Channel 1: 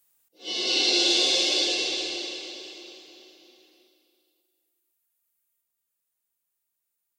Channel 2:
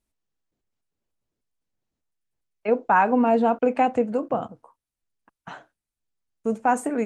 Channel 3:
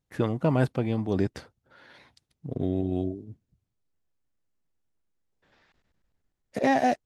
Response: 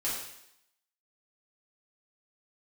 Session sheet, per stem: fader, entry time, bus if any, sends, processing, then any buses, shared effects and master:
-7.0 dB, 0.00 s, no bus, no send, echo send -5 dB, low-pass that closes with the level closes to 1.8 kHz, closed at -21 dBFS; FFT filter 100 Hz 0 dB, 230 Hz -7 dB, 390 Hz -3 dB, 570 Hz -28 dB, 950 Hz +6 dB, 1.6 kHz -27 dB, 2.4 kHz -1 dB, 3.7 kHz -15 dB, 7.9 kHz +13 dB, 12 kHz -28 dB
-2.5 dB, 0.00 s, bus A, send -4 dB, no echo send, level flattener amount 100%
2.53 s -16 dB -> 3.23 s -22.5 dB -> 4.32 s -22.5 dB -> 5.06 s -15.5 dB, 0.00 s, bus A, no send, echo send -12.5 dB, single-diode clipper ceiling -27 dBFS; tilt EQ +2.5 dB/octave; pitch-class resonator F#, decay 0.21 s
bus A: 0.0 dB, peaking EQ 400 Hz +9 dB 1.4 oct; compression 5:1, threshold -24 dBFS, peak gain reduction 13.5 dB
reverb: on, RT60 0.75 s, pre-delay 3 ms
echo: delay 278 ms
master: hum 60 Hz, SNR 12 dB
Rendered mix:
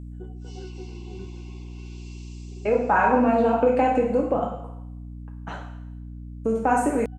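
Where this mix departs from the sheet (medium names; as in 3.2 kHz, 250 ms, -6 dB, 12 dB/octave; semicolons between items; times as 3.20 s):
stem 1 -7.0 dB -> -14.5 dB; stem 2: missing level flattener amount 100%; stem 3 -16.0 dB -> -7.5 dB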